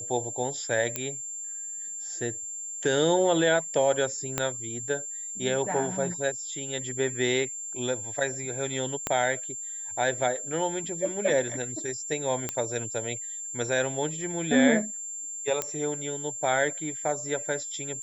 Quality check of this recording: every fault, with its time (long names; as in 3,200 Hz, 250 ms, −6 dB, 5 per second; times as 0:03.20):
whistle 7,300 Hz −34 dBFS
0:00.96: click −12 dBFS
0:04.38: click −10 dBFS
0:09.07: click −12 dBFS
0:12.49: click −13 dBFS
0:15.62: click −12 dBFS